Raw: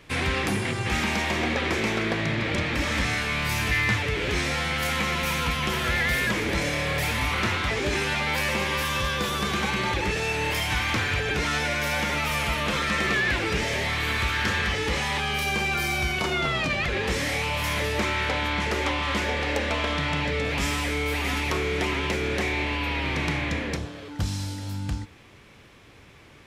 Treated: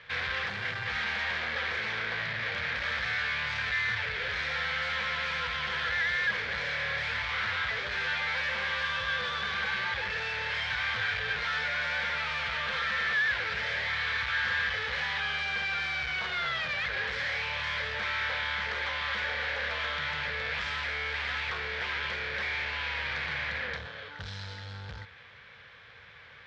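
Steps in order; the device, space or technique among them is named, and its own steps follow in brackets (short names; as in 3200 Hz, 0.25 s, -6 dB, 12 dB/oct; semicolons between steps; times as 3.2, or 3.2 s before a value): 10.93–11.35 doubler 18 ms -5.5 dB; scooped metal amplifier (tube stage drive 32 dB, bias 0.45; speaker cabinet 96–3700 Hz, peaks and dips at 240 Hz +4 dB, 490 Hz +10 dB, 1600 Hz +8 dB, 2700 Hz -6 dB; passive tone stack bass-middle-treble 10-0-10); gain +8.5 dB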